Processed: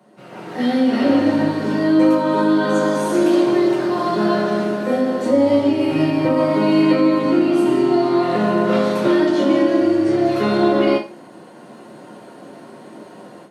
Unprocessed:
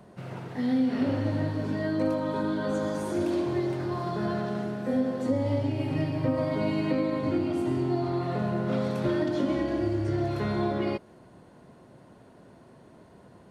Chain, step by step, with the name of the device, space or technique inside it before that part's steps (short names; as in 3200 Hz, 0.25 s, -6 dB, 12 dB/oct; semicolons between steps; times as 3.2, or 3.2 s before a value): far laptop microphone (reverb RT60 0.30 s, pre-delay 4 ms, DRR -3 dB; HPF 180 Hz 24 dB/oct; AGC gain up to 14 dB); gain -3 dB